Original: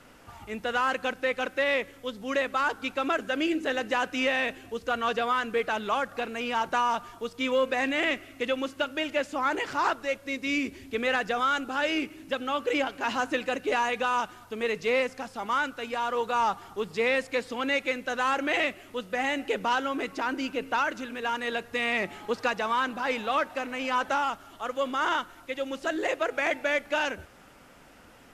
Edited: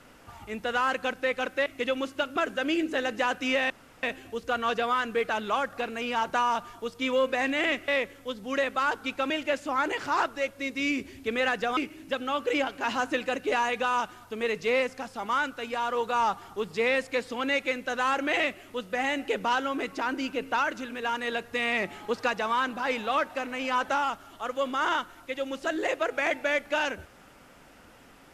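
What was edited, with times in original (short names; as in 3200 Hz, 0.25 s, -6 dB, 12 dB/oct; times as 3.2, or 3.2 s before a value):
1.66–3.08 swap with 8.27–8.97
4.42 insert room tone 0.33 s
11.44–11.97 cut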